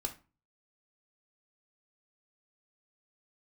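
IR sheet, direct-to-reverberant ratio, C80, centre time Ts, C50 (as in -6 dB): 4.0 dB, 19.5 dB, 10 ms, 13.0 dB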